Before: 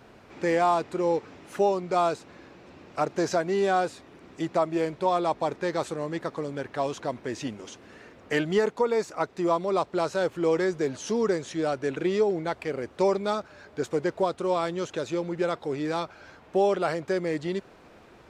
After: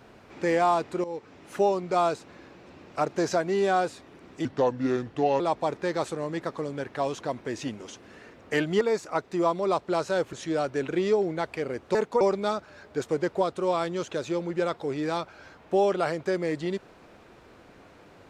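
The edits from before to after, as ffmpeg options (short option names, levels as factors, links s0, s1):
-filter_complex "[0:a]asplit=8[s0][s1][s2][s3][s4][s5][s6][s7];[s0]atrim=end=1.04,asetpts=PTS-STARTPTS,afade=t=out:st=1.036:d=0.004:c=hsin:silence=0.177828[s8];[s1]atrim=start=1.04:end=4.454,asetpts=PTS-STARTPTS,afade=t=in:d=0.51:silence=0.177828[s9];[s2]atrim=start=4.45:end=5.19,asetpts=PTS-STARTPTS,asetrate=34398,aresample=44100,atrim=end_sample=41838,asetpts=PTS-STARTPTS[s10];[s3]atrim=start=5.186:end=8.602[s11];[s4]atrim=start=8.858:end=10.382[s12];[s5]atrim=start=11.408:end=13.032[s13];[s6]atrim=start=8.598:end=8.862[s14];[s7]atrim=start=13.028[s15];[s8][s9]concat=n=2:v=0:a=1[s16];[s16][s10]acrossfade=d=0.004:c1=hsin:c2=hsin[s17];[s17][s11]acrossfade=d=0.004:c1=hsin:c2=hsin[s18];[s18][s12]acrossfade=d=0.004:c1=hsin:c2=hsin[s19];[s19][s13]acrossfade=d=0.004:c1=hsin:c2=hsin[s20];[s20][s14]acrossfade=d=0.004:c1=hsin:c2=hsin[s21];[s21][s15]acrossfade=d=0.004:c1=hsin:c2=hsin"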